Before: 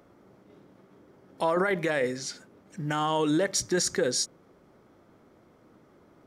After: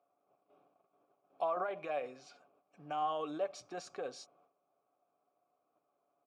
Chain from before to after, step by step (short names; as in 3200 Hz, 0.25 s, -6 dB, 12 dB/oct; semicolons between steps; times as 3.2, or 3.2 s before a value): HPF 50 Hz 6 dB/oct; low shelf 92 Hz +5.5 dB; gate -54 dBFS, range -11 dB; vowel filter a; comb 7 ms, depth 36%; gain +1 dB